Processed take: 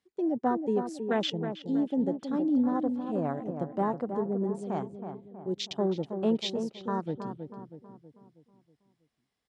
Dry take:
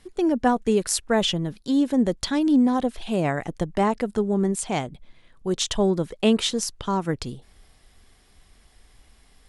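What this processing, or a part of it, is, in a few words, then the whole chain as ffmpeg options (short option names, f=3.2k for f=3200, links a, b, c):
over-cleaned archive recording: -filter_complex "[0:a]highpass=140,lowpass=7.5k,afwtdn=0.0447,asplit=2[a][b];[b]adelay=321,lowpass=f=1.4k:p=1,volume=-7dB,asplit=2[c][d];[d]adelay=321,lowpass=f=1.4k:p=1,volume=0.5,asplit=2[e][f];[f]adelay=321,lowpass=f=1.4k:p=1,volume=0.5,asplit=2[g][h];[h]adelay=321,lowpass=f=1.4k:p=1,volume=0.5,asplit=2[i][j];[j]adelay=321,lowpass=f=1.4k:p=1,volume=0.5,asplit=2[k][l];[l]adelay=321,lowpass=f=1.4k:p=1,volume=0.5[m];[a][c][e][g][i][k][m]amix=inputs=7:normalize=0,volume=-7dB"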